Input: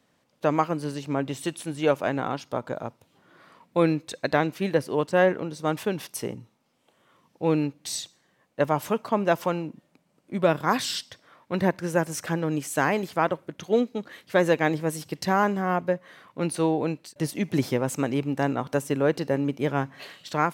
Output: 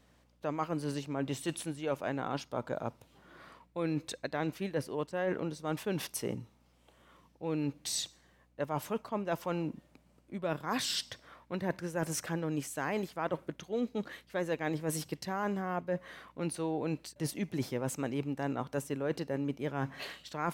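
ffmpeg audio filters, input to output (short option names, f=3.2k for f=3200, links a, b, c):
-af "areverse,acompressor=threshold=-31dB:ratio=6,areverse,aeval=exprs='val(0)+0.000398*(sin(2*PI*60*n/s)+sin(2*PI*2*60*n/s)/2+sin(2*PI*3*60*n/s)/3+sin(2*PI*4*60*n/s)/4+sin(2*PI*5*60*n/s)/5)':c=same"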